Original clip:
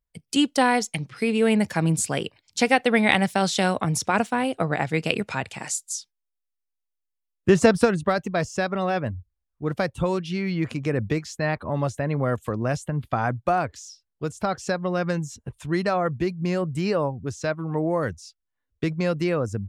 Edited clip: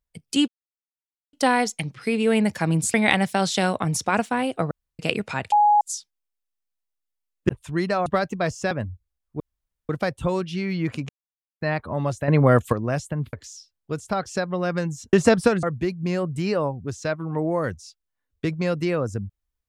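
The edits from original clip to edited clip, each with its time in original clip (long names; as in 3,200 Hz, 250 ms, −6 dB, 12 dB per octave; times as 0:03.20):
0:00.48: splice in silence 0.85 s
0:02.09–0:02.95: remove
0:04.72–0:05.00: fill with room tone
0:05.53–0:05.82: beep over 833 Hz −13 dBFS
0:07.50–0:08.00: swap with 0:15.45–0:16.02
0:08.65–0:08.97: remove
0:09.66: splice in room tone 0.49 s
0:10.86–0:11.38: silence
0:12.05–0:12.50: clip gain +8 dB
0:13.10–0:13.65: remove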